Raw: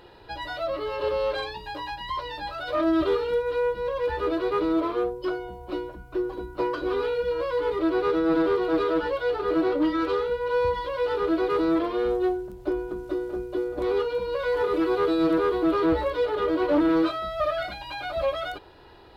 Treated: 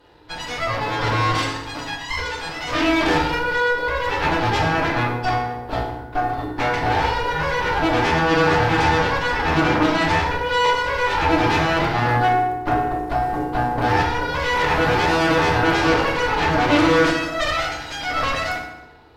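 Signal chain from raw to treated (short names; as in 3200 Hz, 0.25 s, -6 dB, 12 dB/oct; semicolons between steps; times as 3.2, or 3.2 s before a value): added harmonics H 3 -14 dB, 7 -17 dB, 8 -8 dB, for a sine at -12.5 dBFS; FDN reverb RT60 0.97 s, low-frequency decay 1.35×, high-frequency decay 0.75×, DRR -1 dB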